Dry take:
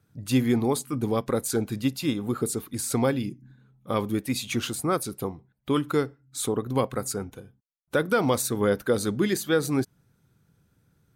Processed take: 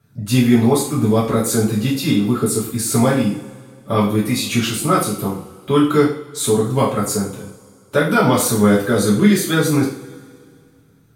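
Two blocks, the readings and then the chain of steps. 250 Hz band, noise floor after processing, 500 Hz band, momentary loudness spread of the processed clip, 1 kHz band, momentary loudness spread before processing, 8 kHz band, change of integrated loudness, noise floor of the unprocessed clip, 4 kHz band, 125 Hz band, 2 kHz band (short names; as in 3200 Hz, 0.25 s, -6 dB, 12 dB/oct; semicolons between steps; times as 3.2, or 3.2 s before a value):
+10.5 dB, -51 dBFS, +8.0 dB, 8 LU, +10.0 dB, 9 LU, +9.5 dB, +10.0 dB, -69 dBFS, +9.5 dB, +11.5 dB, +9.0 dB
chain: two-slope reverb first 0.44 s, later 2.2 s, from -21 dB, DRR -7 dB; gain +2 dB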